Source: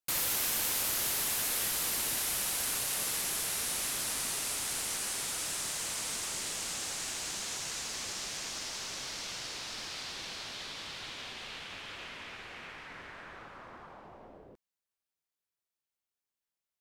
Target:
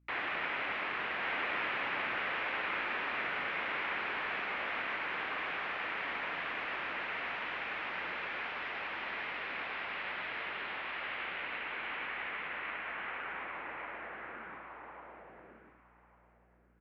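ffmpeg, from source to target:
-filter_complex "[0:a]equalizer=f=330:w=0.34:g=-10.5,highpass=f=420:t=q:w=0.5412,highpass=f=420:t=q:w=1.307,lowpass=f=2.6k:t=q:w=0.5176,lowpass=f=2.6k:t=q:w=0.7071,lowpass=f=2.6k:t=q:w=1.932,afreqshift=-210,asplit=2[a][b];[b]aecho=0:1:1148|2296|3444:0.668|0.107|0.0171[c];[a][c]amix=inputs=2:normalize=0,aeval=exprs='val(0)+0.000158*(sin(2*PI*60*n/s)+sin(2*PI*2*60*n/s)/2+sin(2*PI*3*60*n/s)/3+sin(2*PI*4*60*n/s)/4+sin(2*PI*5*60*n/s)/5)':c=same,asplit=2[d][e];[e]adelay=105,volume=-7dB,highshelf=f=4k:g=-2.36[f];[d][f]amix=inputs=2:normalize=0,volume=8.5dB"

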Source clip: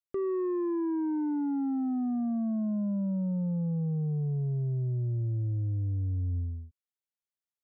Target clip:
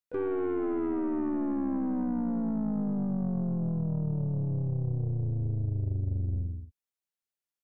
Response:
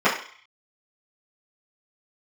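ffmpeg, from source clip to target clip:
-filter_complex "[0:a]asplit=4[a][b][c][d];[b]asetrate=33038,aresample=44100,atempo=1.33484,volume=-13dB[e];[c]asetrate=35002,aresample=44100,atempo=1.25992,volume=-16dB[f];[d]asetrate=55563,aresample=44100,atempo=0.793701,volume=-9dB[g];[a][e][f][g]amix=inputs=4:normalize=0,aeval=exprs='0.075*(cos(1*acos(clip(val(0)/0.075,-1,1)))-cos(1*PI/2))+0.0075*(cos(4*acos(clip(val(0)/0.075,-1,1)))-cos(4*PI/2))':c=same,volume=-1dB"

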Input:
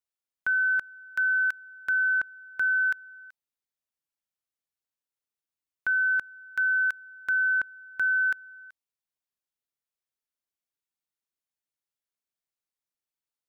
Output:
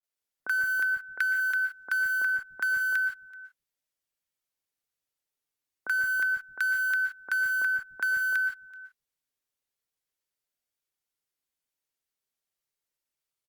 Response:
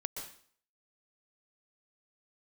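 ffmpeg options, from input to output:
-filter_complex "[0:a]asplit=2[a][b];[b]acrusher=bits=4:mix=0:aa=0.000001,volume=-9dB[c];[a][c]amix=inputs=2:normalize=0,asettb=1/sr,asplit=3[d][e][f];[d]atrim=end=0.974[g];[e]atrim=start=0.97:end=1.37,asetpts=PTS-STARTPTS,afade=t=in:d=0.004:c=qsin,afade=t=out:st=0.396:d=0.004:c=qsin,equalizer=f=125:t=o:w=1:g=-5,equalizer=f=250:t=o:w=1:g=-4,equalizer=f=500:t=o:w=1:g=6,equalizer=f=1k:t=o:w=1:g=-5,equalizer=f=2k:t=o:w=1:g=8[h];[f]atrim=start=1.366[i];[g][h]acrossfade=d=0.004:c1=hsin:c2=qsin[j];[j][i]acrossfade=d=0.004:c1=qsin:c2=hsin[k];[1:a]atrim=start_sample=2205,afade=t=out:st=0.23:d=0.01,atrim=end_sample=10584[l];[k][l]afir=irnorm=-1:irlink=0,acompressor=threshold=-26dB:ratio=20,acrossover=split=200|1000[m][n][o];[o]adelay=30[p];[m]adelay=170[q];[q][n][p]amix=inputs=3:normalize=0,volume=4dB" -ar 48000 -c:a libopus -b:a 48k

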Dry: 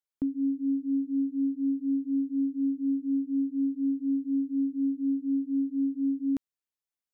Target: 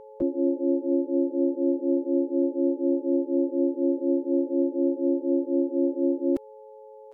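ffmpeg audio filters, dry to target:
-filter_complex "[0:a]aeval=exprs='val(0)+0.00447*sin(2*PI*430*n/s)':c=same,asplit=3[a][b][c];[b]asetrate=55563,aresample=44100,atempo=0.793701,volume=0dB[d];[c]asetrate=88200,aresample=44100,atempo=0.5,volume=-5dB[e];[a][d][e]amix=inputs=3:normalize=0"

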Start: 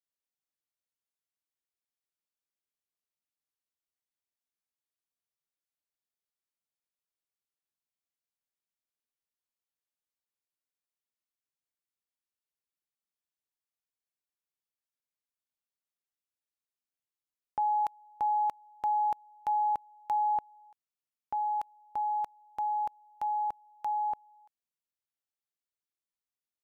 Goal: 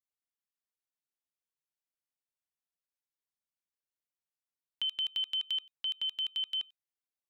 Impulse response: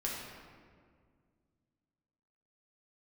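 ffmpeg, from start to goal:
-af "acompressor=threshold=-30dB:ratio=6,bandreject=f=340.3:t=h:w=4,bandreject=f=680.6:t=h:w=4,bandreject=f=1.0209k:t=h:w=4,asetrate=160965,aresample=44100"

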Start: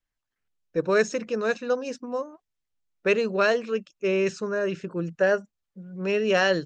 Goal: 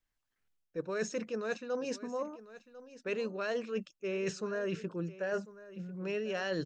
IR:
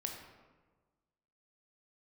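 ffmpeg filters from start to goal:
-af "areverse,acompressor=threshold=-33dB:ratio=6,areverse,aecho=1:1:1047:0.15"

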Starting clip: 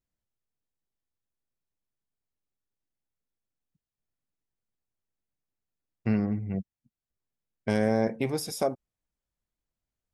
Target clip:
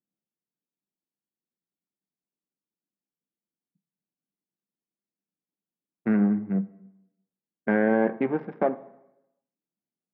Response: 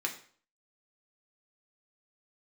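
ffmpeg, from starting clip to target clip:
-filter_complex "[0:a]adynamicsmooth=sensitivity=7.5:basefreq=560,highpass=f=170:w=0.5412,highpass=f=170:w=1.3066,equalizer=f=200:t=q:w=4:g=7,equalizer=f=330:t=q:w=4:g=5,equalizer=f=860:t=q:w=4:g=3,equalizer=f=1.6k:t=q:w=4:g=8,lowpass=f=2.2k:w=0.5412,lowpass=f=2.2k:w=1.3066,asplit=2[a][b];[1:a]atrim=start_sample=2205,asetrate=22932,aresample=44100[c];[b][c]afir=irnorm=-1:irlink=0,volume=-17dB[d];[a][d]amix=inputs=2:normalize=0"

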